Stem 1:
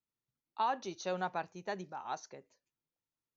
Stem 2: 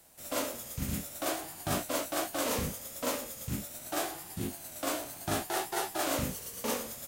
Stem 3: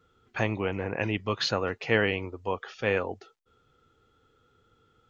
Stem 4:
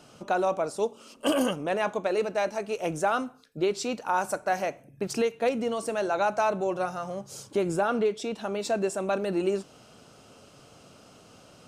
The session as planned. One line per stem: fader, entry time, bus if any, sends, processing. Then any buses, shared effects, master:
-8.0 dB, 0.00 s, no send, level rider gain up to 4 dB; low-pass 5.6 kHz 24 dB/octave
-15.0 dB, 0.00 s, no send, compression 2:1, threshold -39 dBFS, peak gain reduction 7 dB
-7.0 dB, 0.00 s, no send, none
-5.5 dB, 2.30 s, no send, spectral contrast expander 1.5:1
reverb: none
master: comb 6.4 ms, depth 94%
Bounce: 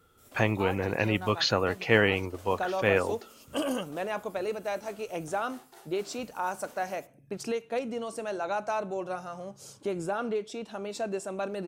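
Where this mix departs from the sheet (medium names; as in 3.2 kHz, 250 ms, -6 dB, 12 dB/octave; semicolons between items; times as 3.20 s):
stem 3 -7.0 dB -> +2.0 dB; stem 4: missing spectral contrast expander 1.5:1; master: missing comb 6.4 ms, depth 94%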